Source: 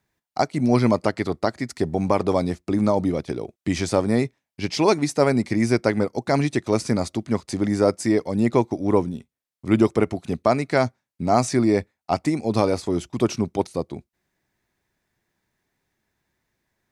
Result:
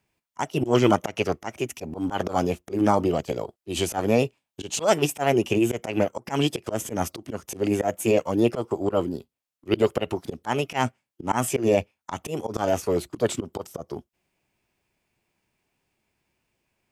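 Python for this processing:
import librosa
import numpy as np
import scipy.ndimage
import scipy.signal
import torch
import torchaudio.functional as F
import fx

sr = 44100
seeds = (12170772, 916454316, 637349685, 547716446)

y = fx.auto_swell(x, sr, attack_ms=123.0)
y = fx.formant_shift(y, sr, semitones=5)
y = fx.dynamic_eq(y, sr, hz=2700.0, q=2.5, threshold_db=-48.0, ratio=4.0, max_db=6)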